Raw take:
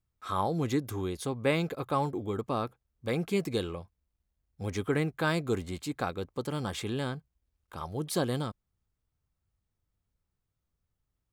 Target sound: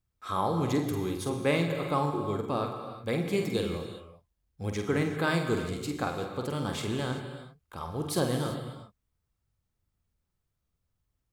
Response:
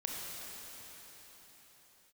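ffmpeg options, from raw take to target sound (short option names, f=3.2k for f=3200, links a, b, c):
-filter_complex "[0:a]asplit=2[a][b];[1:a]atrim=start_sample=2205,afade=t=out:st=0.4:d=0.01,atrim=end_sample=18081,adelay=48[c];[b][c]afir=irnorm=-1:irlink=0,volume=-4.5dB[d];[a][d]amix=inputs=2:normalize=0"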